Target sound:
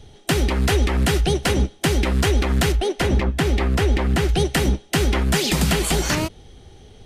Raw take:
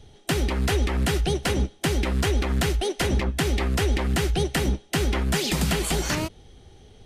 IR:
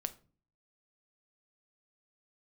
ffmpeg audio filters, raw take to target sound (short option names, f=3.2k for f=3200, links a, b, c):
-filter_complex "[0:a]asettb=1/sr,asplit=3[a][b][c];[a]atrim=end=2.724[d];[b]atrim=start=2.72:end=4.29,asetpts=PTS-STARTPTS,afade=t=in:d=0.004:c=qsin,afade=t=out:st=1.566:d=0.004:c=qsin,highshelf=f=3.7k:g=-7.5[e];[c]atrim=start=4.286[f];[d][e]acrossfade=d=0.004:c1=hsin:c2=qsin[g];[g][f]acrossfade=d=0.004:c1=qsin:c2=hsin,volume=4.5dB"